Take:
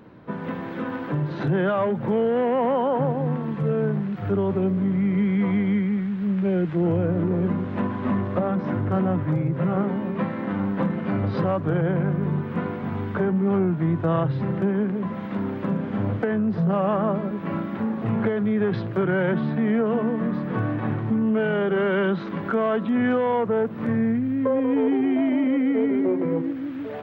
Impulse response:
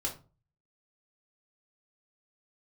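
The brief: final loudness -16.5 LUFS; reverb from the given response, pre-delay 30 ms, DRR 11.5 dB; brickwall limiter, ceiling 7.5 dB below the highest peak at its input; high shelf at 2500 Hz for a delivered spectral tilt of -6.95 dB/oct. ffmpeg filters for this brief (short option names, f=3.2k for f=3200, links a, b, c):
-filter_complex "[0:a]highshelf=f=2.5k:g=-9,alimiter=limit=-19dB:level=0:latency=1,asplit=2[a][b];[1:a]atrim=start_sample=2205,adelay=30[c];[b][c]afir=irnorm=-1:irlink=0,volume=-14dB[d];[a][d]amix=inputs=2:normalize=0,volume=10dB"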